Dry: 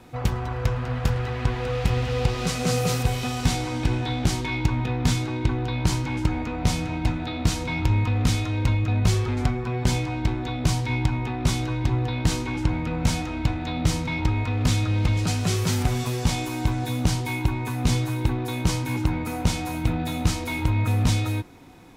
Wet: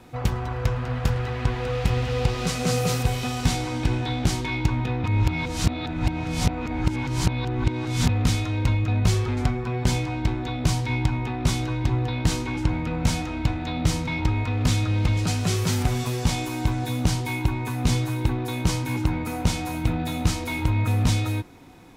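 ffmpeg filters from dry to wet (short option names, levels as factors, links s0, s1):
-filter_complex "[0:a]asplit=3[s0][s1][s2];[s0]atrim=end=5.042[s3];[s1]atrim=start=5.038:end=8.092,asetpts=PTS-STARTPTS,areverse[s4];[s2]atrim=start=8.088[s5];[s3][s4]acrossfade=d=0.004:c1=hsin:c2=hsin[s6];[s6][s5]acrossfade=d=0.004:c1=hsin:c2=hsin"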